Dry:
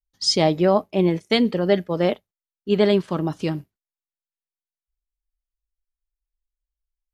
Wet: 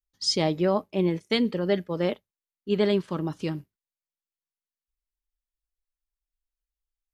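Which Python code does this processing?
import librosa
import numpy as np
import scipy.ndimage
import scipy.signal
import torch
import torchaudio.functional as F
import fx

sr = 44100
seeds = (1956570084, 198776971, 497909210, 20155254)

y = fx.peak_eq(x, sr, hz=700.0, db=-6.0, octaves=0.31)
y = y * librosa.db_to_amplitude(-5.0)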